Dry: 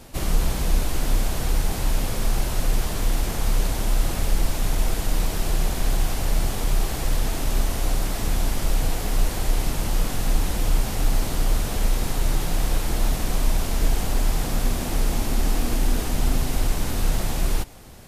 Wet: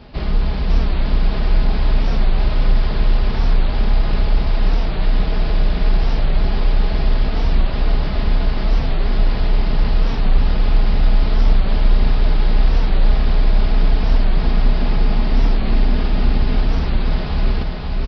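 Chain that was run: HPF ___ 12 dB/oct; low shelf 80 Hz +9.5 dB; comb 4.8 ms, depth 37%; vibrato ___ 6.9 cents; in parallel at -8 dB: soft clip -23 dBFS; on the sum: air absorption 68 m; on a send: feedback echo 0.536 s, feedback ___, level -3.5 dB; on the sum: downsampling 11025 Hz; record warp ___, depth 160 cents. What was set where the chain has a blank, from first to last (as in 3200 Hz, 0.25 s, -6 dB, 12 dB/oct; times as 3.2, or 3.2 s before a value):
44 Hz, 4.1 Hz, 57%, 45 rpm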